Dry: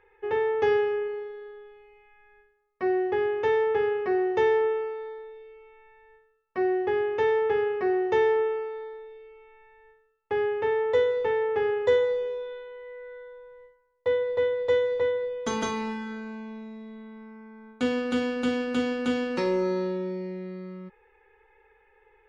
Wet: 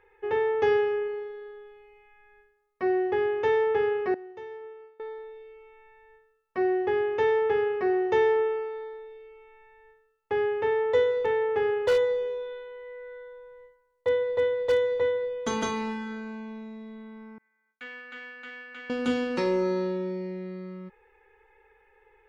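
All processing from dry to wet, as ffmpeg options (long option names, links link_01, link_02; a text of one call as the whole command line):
ffmpeg -i in.wav -filter_complex "[0:a]asettb=1/sr,asplit=3[link_01][link_02][link_03];[link_01]atrim=end=4.144[link_04];[link_02]atrim=start=4.14:end=5,asetpts=PTS-STARTPTS,afade=type=in:duration=0.004:curve=qsin,afade=type=out:start_time=0.856:duration=0.004:curve=qsin,agate=range=-33dB:threshold=-20dB:ratio=3:release=100:detection=peak,acompressor=threshold=-44dB:ratio=3:attack=3.2:release=140:knee=1:detection=peak[link_05];[link_03]atrim=start=4.996[link_06];[link_04][link_05]acrossfade=duration=0.004:curve1=hsin:curve2=qsin[link_07];[link_07][link_06]acrossfade=duration=0.004:curve1=qsin:curve2=hsin,asettb=1/sr,asplit=3[link_08][link_09][link_10];[link_08]atrim=end=11.164[link_11];[link_09]atrim=start=11.16:end=16.82,asetpts=PTS-STARTPTS,afade=type=in:duration=0.004:curve=qsin,afade=type=out:start_time=5.656:duration=0.004:curve=qsin,bandreject=frequency=5100:width=16,aeval=exprs='0.141*(abs(mod(val(0)/0.141+3,4)-2)-1)':channel_layout=same[link_12];[link_10]atrim=start=16.816[link_13];[link_11][link_12]acrossfade=duration=0.004:curve1=hsin:curve2=qsin[link_14];[link_14][link_13]acrossfade=duration=0.004:curve1=qsin:curve2=hsin,asettb=1/sr,asplit=3[link_15][link_16][link_17];[link_15]atrim=end=17.384[link_18];[link_16]atrim=start=17.38:end=18.9,asetpts=PTS-STARTPTS,afade=type=in:duration=0.004:curve=qsin,afade=type=out:start_time=1.516:duration=0.004:curve=qsin,bandpass=frequency=1900:width_type=q:width=3.7,agate=range=-33dB:threshold=-56dB:ratio=3:release=100:detection=peak[link_19];[link_17]atrim=start=18.896[link_20];[link_18][link_19]acrossfade=duration=0.004:curve1=hsin:curve2=qsin[link_21];[link_21][link_20]acrossfade=duration=0.004:curve1=qsin:curve2=hsin" out.wav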